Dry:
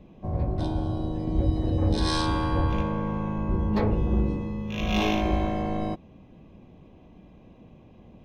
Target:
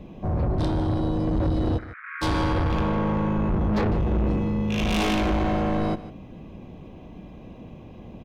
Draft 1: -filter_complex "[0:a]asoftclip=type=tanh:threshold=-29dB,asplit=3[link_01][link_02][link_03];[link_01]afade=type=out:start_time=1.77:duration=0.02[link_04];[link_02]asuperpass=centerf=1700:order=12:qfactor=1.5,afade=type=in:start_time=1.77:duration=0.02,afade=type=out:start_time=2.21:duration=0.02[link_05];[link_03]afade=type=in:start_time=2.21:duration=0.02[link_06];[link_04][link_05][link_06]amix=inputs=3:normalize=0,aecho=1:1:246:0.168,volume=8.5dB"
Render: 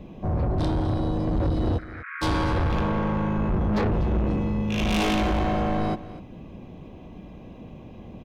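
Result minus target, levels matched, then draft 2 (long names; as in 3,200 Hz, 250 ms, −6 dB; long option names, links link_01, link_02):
echo 94 ms late
-filter_complex "[0:a]asoftclip=type=tanh:threshold=-29dB,asplit=3[link_01][link_02][link_03];[link_01]afade=type=out:start_time=1.77:duration=0.02[link_04];[link_02]asuperpass=centerf=1700:order=12:qfactor=1.5,afade=type=in:start_time=1.77:duration=0.02,afade=type=out:start_time=2.21:duration=0.02[link_05];[link_03]afade=type=in:start_time=2.21:duration=0.02[link_06];[link_04][link_05][link_06]amix=inputs=3:normalize=0,aecho=1:1:152:0.168,volume=8.5dB"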